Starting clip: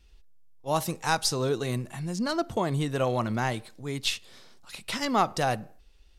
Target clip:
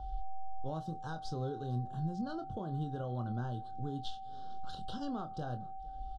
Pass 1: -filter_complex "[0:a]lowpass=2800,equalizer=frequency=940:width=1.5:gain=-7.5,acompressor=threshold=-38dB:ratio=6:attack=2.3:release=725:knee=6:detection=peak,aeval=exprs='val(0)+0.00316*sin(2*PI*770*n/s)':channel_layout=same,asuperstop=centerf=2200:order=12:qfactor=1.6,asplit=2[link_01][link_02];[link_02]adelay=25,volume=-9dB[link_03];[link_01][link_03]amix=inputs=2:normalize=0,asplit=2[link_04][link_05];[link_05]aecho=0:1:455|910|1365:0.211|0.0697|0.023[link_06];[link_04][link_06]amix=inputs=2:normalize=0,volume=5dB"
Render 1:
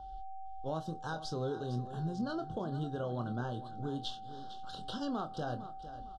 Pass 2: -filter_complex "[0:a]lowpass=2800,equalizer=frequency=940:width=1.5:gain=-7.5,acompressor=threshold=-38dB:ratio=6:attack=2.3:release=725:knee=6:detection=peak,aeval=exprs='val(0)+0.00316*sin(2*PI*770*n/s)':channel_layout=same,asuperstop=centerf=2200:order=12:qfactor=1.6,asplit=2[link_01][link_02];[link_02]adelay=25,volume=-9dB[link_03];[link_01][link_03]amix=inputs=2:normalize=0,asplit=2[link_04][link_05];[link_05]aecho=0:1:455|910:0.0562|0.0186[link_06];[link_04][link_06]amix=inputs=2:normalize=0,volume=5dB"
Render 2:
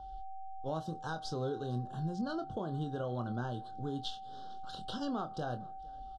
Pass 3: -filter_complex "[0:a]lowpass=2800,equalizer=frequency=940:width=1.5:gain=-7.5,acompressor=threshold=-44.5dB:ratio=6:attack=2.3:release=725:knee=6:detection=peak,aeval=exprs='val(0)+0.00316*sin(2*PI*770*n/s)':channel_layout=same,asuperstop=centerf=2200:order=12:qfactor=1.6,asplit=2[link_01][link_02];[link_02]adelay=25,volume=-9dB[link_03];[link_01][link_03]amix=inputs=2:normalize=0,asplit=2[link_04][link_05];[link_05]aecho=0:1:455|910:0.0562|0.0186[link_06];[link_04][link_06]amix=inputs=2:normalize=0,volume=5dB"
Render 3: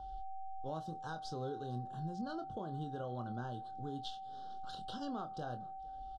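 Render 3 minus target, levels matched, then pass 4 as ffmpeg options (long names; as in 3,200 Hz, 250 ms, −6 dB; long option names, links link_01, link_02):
125 Hz band −3.5 dB
-filter_complex "[0:a]lowpass=2800,equalizer=frequency=940:width=1.5:gain=-7.5,acompressor=threshold=-44.5dB:ratio=6:attack=2.3:release=725:knee=6:detection=peak,aeval=exprs='val(0)+0.00316*sin(2*PI*770*n/s)':channel_layout=same,asuperstop=centerf=2200:order=12:qfactor=1.6,lowshelf=frequency=170:gain=11,asplit=2[link_01][link_02];[link_02]adelay=25,volume=-9dB[link_03];[link_01][link_03]amix=inputs=2:normalize=0,asplit=2[link_04][link_05];[link_05]aecho=0:1:455|910:0.0562|0.0186[link_06];[link_04][link_06]amix=inputs=2:normalize=0,volume=5dB"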